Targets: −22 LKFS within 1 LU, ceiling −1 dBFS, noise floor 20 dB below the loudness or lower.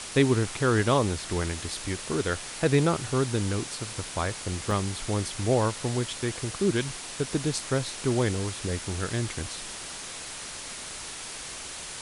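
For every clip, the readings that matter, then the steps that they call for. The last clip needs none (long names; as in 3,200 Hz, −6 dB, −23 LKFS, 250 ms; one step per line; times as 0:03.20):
number of dropouts 1; longest dropout 2.4 ms; background noise floor −39 dBFS; target noise floor −49 dBFS; integrated loudness −28.5 LKFS; sample peak −9.0 dBFS; target loudness −22.0 LKFS
→ repair the gap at 0:04.71, 2.4 ms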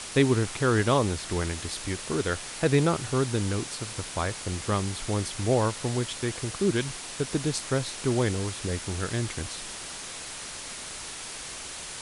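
number of dropouts 0; background noise floor −39 dBFS; target noise floor −49 dBFS
→ broadband denoise 10 dB, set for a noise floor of −39 dBFS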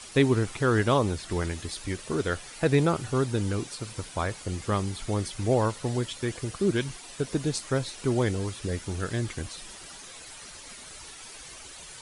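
background noise floor −45 dBFS; target noise floor −49 dBFS
→ broadband denoise 6 dB, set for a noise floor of −45 dBFS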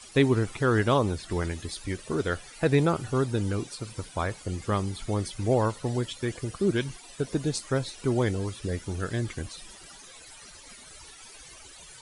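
background noise floor −49 dBFS; integrated loudness −28.5 LKFS; sample peak −9.5 dBFS; target loudness −22.0 LKFS
→ level +6.5 dB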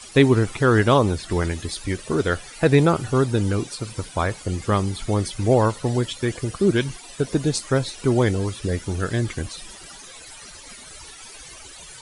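integrated loudness −22.0 LKFS; sample peak −3.0 dBFS; background noise floor −42 dBFS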